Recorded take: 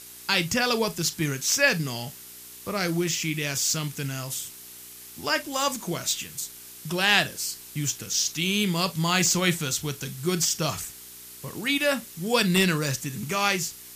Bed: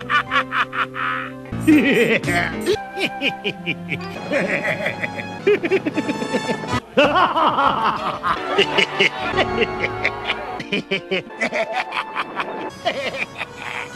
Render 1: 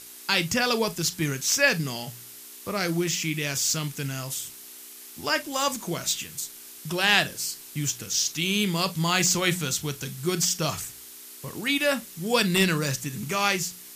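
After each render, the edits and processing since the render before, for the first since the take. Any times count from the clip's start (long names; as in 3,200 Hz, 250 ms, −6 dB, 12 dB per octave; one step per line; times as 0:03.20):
hum removal 60 Hz, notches 3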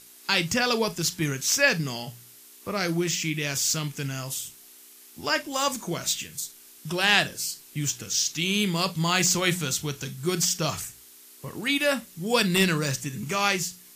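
noise reduction from a noise print 6 dB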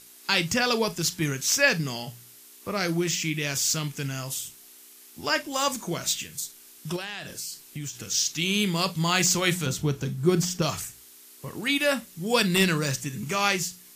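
0:06.96–0:08.11: downward compressor 16 to 1, threshold −30 dBFS
0:09.66–0:10.62: tilt shelving filter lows +6.5 dB, about 1,300 Hz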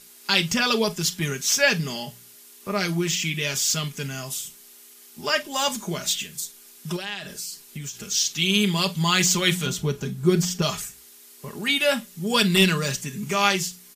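dynamic equaliser 3,200 Hz, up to +5 dB, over −41 dBFS, Q 3.1
comb filter 4.9 ms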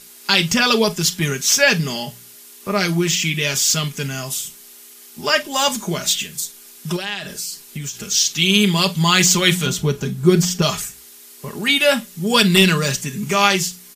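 level +6 dB
brickwall limiter −1 dBFS, peak gain reduction 2.5 dB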